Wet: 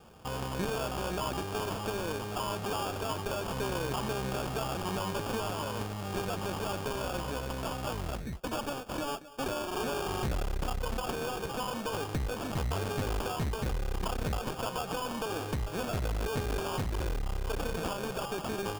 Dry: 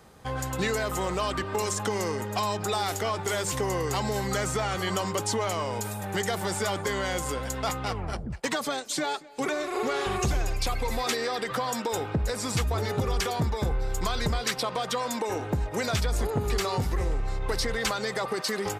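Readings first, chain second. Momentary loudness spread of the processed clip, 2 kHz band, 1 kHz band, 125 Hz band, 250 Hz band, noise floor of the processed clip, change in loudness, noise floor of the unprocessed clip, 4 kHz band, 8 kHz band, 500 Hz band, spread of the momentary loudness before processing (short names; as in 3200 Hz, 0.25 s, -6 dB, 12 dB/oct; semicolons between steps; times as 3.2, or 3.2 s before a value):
3 LU, -7.0 dB, -5.0 dB, -4.5 dB, -4.0 dB, -39 dBFS, -5.5 dB, -37 dBFS, -7.0 dB, -10.0 dB, -5.5 dB, 3 LU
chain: tracing distortion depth 0.5 ms; one-sided clip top -35.5 dBFS, bottom -22 dBFS; sample-and-hold 22×; gain -1.5 dB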